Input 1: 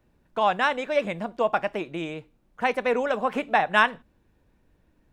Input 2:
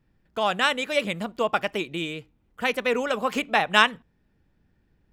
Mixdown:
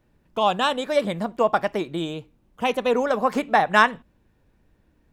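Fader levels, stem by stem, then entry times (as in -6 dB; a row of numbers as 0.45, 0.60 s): +0.5, -3.0 dB; 0.00, 0.00 s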